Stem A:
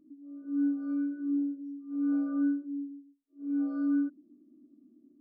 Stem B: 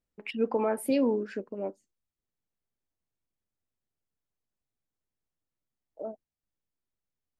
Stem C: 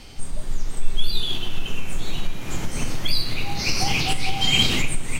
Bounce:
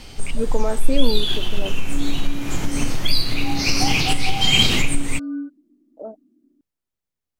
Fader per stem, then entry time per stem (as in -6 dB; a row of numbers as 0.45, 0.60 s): -0.5, +3.0, +3.0 dB; 1.40, 0.00, 0.00 s